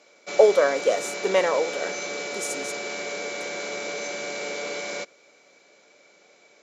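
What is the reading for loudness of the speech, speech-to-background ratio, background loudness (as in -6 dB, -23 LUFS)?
-23.0 LUFS, 8.0 dB, -31.0 LUFS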